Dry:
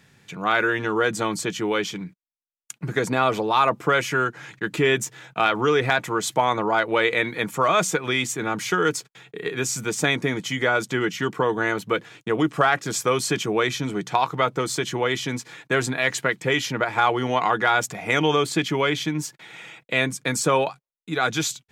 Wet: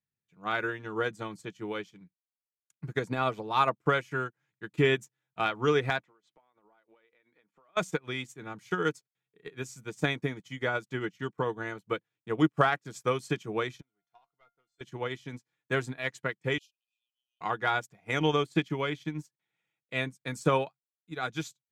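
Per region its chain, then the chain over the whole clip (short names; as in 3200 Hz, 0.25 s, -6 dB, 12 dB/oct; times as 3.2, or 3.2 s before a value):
6.04–7.77 BPF 250–3800 Hz + compressor 12:1, threshold -30 dBFS
13.81–14.81 overdrive pedal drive 11 dB, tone 3400 Hz, clips at -6.5 dBFS + resonator 700 Hz, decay 0.26 s, mix 90%
16.58–17.41 compressor 5:1, threshold -27 dBFS + brick-wall FIR high-pass 2400 Hz
whole clip: low shelf 150 Hz +9.5 dB; upward expander 2.5:1, over -41 dBFS; gain -3 dB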